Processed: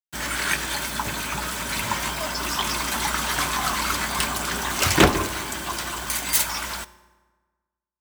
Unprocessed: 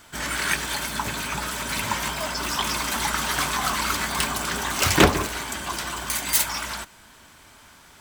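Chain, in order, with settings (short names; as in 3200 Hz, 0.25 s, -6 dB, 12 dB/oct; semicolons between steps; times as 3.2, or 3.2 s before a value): bit-crush 6-bit; on a send: reverb RT60 1.4 s, pre-delay 3 ms, DRR 15 dB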